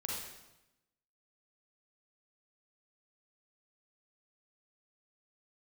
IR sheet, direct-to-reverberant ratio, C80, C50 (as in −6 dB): −3.5 dB, 2.5 dB, −1.0 dB